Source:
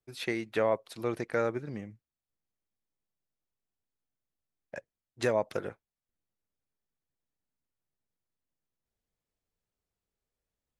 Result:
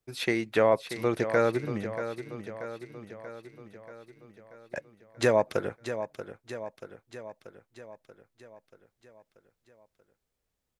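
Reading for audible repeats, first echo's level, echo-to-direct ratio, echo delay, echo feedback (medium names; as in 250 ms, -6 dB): 6, -10.5 dB, -8.5 dB, 634 ms, 59%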